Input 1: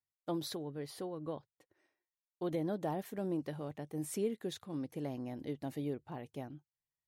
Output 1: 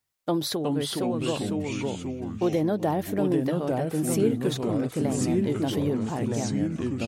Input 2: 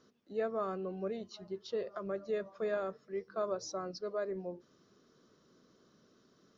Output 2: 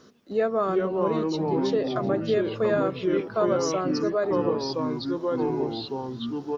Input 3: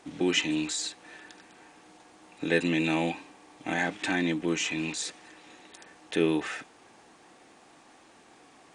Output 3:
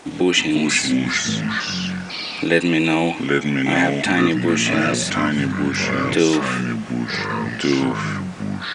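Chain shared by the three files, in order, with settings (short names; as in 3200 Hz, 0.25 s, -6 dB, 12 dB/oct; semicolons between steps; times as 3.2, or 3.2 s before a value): echoes that change speed 0.312 s, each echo -3 st, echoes 3; in parallel at -1 dB: compressor, threshold -37 dBFS; on the sum: echo 0.38 s -21 dB; gain +7.5 dB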